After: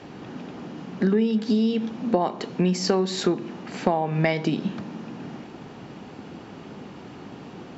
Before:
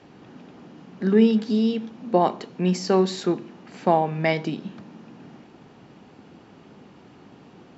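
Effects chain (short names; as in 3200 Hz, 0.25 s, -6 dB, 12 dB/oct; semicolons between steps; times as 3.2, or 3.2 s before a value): compressor 10:1, threshold -26 dBFS, peak gain reduction 14.5 dB; gain +8 dB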